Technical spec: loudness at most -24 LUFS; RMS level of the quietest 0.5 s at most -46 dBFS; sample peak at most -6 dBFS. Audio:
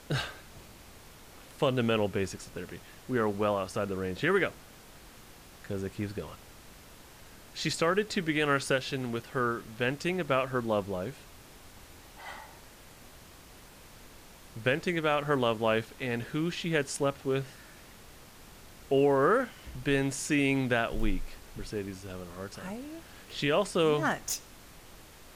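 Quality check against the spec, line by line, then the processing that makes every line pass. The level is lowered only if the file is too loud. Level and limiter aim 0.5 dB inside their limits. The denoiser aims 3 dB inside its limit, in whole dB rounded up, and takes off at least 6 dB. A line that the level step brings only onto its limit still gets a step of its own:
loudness -30.5 LUFS: OK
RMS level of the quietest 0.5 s -52 dBFS: OK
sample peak -14.5 dBFS: OK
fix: none

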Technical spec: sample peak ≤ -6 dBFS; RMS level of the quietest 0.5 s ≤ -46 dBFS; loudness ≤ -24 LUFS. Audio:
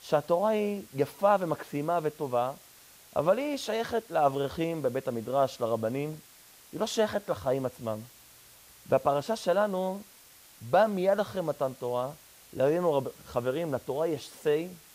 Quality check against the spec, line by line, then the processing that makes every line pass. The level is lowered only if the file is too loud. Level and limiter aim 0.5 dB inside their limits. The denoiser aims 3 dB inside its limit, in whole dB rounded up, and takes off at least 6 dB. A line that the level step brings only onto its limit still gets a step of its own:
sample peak -11.5 dBFS: OK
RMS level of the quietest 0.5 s -55 dBFS: OK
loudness -29.5 LUFS: OK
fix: none

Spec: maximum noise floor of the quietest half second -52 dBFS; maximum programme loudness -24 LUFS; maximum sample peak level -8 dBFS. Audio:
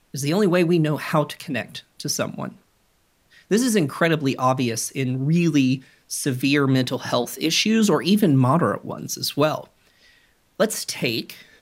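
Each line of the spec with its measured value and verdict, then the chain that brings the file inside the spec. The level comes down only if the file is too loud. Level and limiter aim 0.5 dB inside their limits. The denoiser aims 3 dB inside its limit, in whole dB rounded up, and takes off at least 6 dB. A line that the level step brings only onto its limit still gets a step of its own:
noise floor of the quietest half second -63 dBFS: OK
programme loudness -21.5 LUFS: fail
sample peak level -6.0 dBFS: fail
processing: gain -3 dB

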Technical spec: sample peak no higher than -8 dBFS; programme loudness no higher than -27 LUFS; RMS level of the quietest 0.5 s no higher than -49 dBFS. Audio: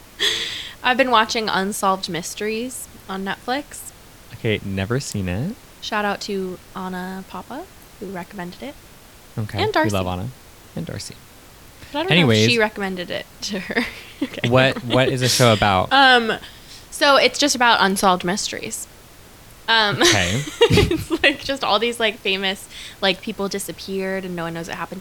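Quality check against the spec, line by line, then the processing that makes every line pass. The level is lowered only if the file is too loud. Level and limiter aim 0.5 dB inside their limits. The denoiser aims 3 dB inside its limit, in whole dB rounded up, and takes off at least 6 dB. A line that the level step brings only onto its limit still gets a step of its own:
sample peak -2.0 dBFS: fail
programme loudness -19.0 LUFS: fail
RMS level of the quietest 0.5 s -45 dBFS: fail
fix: gain -8.5 dB

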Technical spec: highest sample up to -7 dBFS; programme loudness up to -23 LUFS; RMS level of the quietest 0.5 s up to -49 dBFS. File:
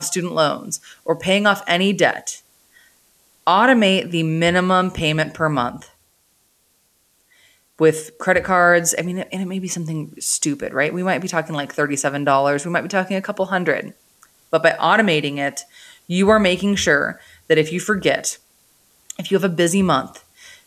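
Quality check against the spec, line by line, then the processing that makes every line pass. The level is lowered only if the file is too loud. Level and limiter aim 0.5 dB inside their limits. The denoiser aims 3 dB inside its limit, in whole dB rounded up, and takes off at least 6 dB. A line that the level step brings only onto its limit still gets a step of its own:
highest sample -2.5 dBFS: fail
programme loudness -18.5 LUFS: fail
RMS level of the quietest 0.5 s -62 dBFS: OK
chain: gain -5 dB

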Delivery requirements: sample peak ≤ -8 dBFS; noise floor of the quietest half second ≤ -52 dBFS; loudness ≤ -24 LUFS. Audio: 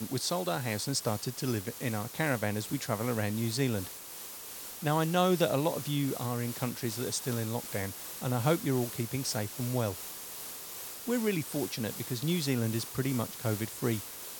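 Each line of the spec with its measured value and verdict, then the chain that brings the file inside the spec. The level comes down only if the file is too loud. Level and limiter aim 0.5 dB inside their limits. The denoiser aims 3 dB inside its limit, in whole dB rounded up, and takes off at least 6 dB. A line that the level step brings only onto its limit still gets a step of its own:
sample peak -13.0 dBFS: OK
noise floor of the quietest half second -44 dBFS: fail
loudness -32.5 LUFS: OK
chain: denoiser 11 dB, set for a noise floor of -44 dBFS

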